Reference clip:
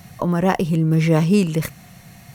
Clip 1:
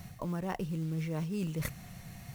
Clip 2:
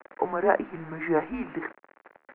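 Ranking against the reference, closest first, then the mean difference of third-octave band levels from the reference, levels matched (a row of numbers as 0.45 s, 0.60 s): 1, 2; 6.0 dB, 11.5 dB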